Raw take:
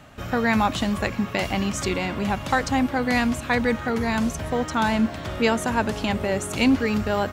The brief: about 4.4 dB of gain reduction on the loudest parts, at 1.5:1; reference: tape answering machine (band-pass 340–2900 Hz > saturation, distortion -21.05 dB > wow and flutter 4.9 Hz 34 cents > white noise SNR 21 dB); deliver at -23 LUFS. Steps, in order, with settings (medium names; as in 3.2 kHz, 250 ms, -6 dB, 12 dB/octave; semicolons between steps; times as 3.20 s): compression 1.5:1, threshold -27 dBFS; band-pass 340–2900 Hz; saturation -15.5 dBFS; wow and flutter 4.9 Hz 34 cents; white noise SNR 21 dB; trim +7.5 dB